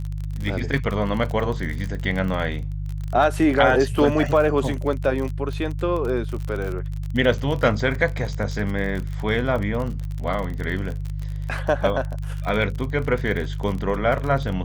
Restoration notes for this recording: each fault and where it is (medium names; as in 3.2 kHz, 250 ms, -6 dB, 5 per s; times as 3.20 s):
crackle 40 per s -27 dBFS
hum 50 Hz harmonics 3 -28 dBFS